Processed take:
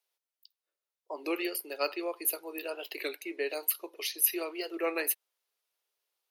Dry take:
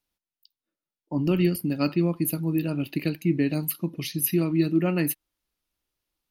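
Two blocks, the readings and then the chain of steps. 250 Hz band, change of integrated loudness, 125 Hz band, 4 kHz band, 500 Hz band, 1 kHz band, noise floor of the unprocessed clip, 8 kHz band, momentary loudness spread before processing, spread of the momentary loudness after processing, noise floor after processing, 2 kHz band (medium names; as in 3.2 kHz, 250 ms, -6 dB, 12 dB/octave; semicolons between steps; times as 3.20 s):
-16.5 dB, -7.0 dB, under -40 dB, -0.5 dB, -5.0 dB, -1.0 dB, under -85 dBFS, 0.0 dB, 6 LU, 11 LU, under -85 dBFS, -0.5 dB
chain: Chebyshev high-pass 400 Hz, order 5; warped record 33 1/3 rpm, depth 160 cents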